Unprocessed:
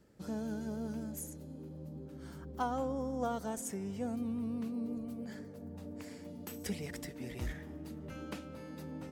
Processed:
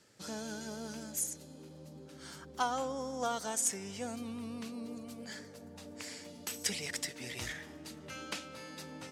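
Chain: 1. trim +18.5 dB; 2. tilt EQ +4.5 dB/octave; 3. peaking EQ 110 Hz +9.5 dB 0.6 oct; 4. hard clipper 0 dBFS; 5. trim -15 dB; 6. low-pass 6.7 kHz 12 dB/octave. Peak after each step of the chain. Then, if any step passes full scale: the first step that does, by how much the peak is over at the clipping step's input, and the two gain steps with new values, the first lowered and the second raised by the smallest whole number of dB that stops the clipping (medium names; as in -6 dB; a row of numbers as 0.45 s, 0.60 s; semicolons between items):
-3.5 dBFS, +4.0 dBFS, +4.0 dBFS, 0.0 dBFS, -15.0 dBFS, -17.5 dBFS; step 2, 4.0 dB; step 1 +14.5 dB, step 5 -11 dB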